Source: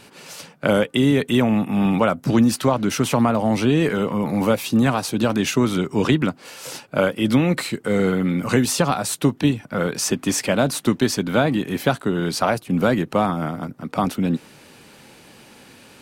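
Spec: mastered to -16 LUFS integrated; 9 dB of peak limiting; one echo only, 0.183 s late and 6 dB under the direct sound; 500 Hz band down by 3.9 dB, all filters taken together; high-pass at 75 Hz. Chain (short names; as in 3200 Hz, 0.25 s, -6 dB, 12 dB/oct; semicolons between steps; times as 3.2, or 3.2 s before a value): HPF 75 Hz; bell 500 Hz -5 dB; limiter -14 dBFS; echo 0.183 s -6 dB; gain +7.5 dB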